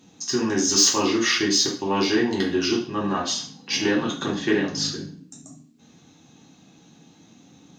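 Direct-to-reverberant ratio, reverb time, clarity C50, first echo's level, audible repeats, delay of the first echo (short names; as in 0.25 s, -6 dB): -3.5 dB, 0.45 s, 6.5 dB, none, none, none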